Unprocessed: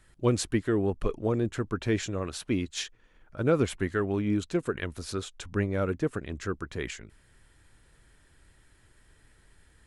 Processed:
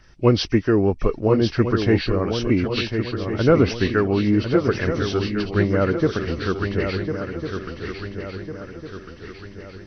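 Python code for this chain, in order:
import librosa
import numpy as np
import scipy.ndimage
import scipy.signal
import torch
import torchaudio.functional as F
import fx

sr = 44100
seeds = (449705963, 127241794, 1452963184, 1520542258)

y = fx.freq_compress(x, sr, knee_hz=1800.0, ratio=1.5)
y = fx.echo_swing(y, sr, ms=1401, ratio=3, feedback_pct=44, wet_db=-7)
y = y * librosa.db_to_amplitude(8.5)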